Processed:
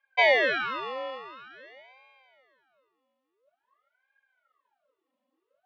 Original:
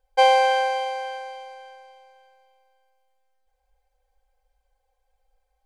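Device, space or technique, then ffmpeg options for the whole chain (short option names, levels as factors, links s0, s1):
voice changer toy: -af "aeval=exprs='val(0)*sin(2*PI*930*n/s+930*0.75/0.48*sin(2*PI*0.48*n/s))':c=same,highpass=500,equalizer=f=560:t=q:w=4:g=9,equalizer=f=850:t=q:w=4:g=-4,equalizer=f=3100:t=q:w=4:g=4,lowpass=f=4100:w=0.5412,lowpass=f=4100:w=1.3066,volume=0.75"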